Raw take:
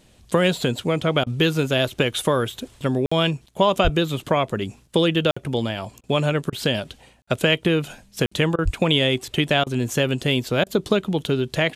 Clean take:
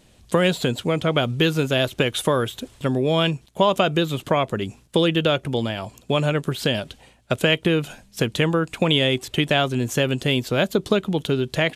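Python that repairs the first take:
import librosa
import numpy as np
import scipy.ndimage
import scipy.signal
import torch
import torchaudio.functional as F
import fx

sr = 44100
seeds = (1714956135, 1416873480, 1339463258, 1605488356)

y = fx.highpass(x, sr, hz=140.0, slope=24, at=(3.83, 3.95), fade=0.02)
y = fx.highpass(y, sr, hz=140.0, slope=24, at=(8.64, 8.76), fade=0.02)
y = fx.fix_interpolate(y, sr, at_s=(3.06, 5.31, 7.22, 8.26), length_ms=55.0)
y = fx.fix_interpolate(y, sr, at_s=(1.24, 6.01, 6.5, 8.56, 9.64, 10.64), length_ms=24.0)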